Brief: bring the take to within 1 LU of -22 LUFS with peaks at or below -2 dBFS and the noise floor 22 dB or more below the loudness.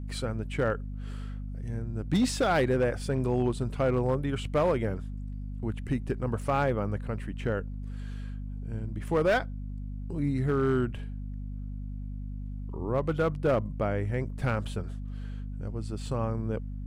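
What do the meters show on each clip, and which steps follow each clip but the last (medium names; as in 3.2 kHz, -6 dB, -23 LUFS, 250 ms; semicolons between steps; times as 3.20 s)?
clipped samples 0.7%; clipping level -19.0 dBFS; hum 50 Hz; highest harmonic 250 Hz; hum level -34 dBFS; loudness -31.0 LUFS; peak level -19.0 dBFS; loudness target -22.0 LUFS
-> clip repair -19 dBFS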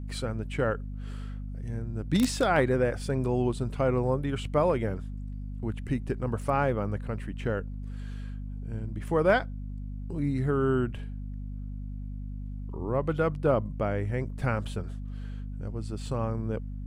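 clipped samples 0.0%; hum 50 Hz; highest harmonic 250 Hz; hum level -34 dBFS
-> hum notches 50/100/150/200/250 Hz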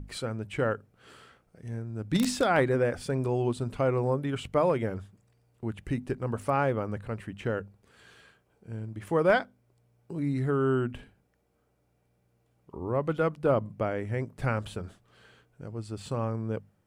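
hum not found; loudness -30.0 LUFS; peak level -11.0 dBFS; loudness target -22.0 LUFS
-> trim +8 dB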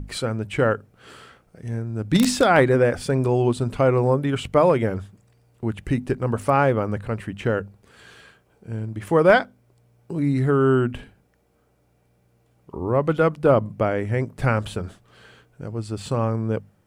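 loudness -22.0 LUFS; peak level -3.0 dBFS; noise floor -63 dBFS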